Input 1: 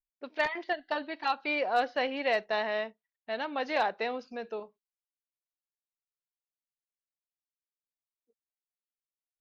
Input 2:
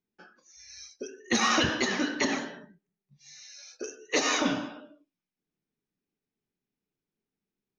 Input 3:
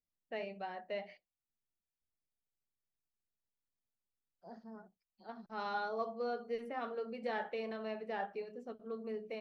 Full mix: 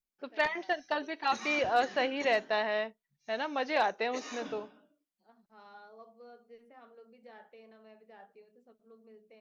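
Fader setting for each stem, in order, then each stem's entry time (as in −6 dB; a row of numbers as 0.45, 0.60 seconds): 0.0, −17.5, −15.0 decibels; 0.00, 0.00, 0.00 seconds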